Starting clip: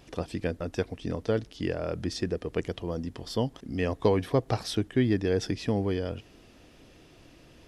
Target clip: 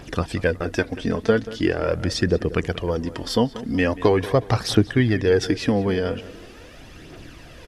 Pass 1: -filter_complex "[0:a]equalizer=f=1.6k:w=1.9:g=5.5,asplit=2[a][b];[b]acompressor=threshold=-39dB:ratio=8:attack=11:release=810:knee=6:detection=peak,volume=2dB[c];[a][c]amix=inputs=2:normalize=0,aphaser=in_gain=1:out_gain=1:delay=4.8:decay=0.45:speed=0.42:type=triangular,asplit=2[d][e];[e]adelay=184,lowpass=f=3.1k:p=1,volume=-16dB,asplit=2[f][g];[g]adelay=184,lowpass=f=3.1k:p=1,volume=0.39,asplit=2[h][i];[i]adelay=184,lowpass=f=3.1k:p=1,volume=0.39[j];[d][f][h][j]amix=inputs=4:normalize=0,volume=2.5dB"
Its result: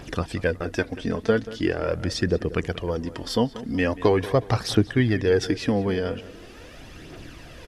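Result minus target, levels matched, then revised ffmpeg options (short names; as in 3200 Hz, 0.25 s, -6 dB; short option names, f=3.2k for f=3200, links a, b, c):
compressor: peak gain reduction +9.5 dB
-filter_complex "[0:a]equalizer=f=1.6k:w=1.9:g=5.5,asplit=2[a][b];[b]acompressor=threshold=-28dB:ratio=8:attack=11:release=810:knee=6:detection=peak,volume=2dB[c];[a][c]amix=inputs=2:normalize=0,aphaser=in_gain=1:out_gain=1:delay=4.8:decay=0.45:speed=0.42:type=triangular,asplit=2[d][e];[e]adelay=184,lowpass=f=3.1k:p=1,volume=-16dB,asplit=2[f][g];[g]adelay=184,lowpass=f=3.1k:p=1,volume=0.39,asplit=2[h][i];[i]adelay=184,lowpass=f=3.1k:p=1,volume=0.39[j];[d][f][h][j]amix=inputs=4:normalize=0,volume=2.5dB"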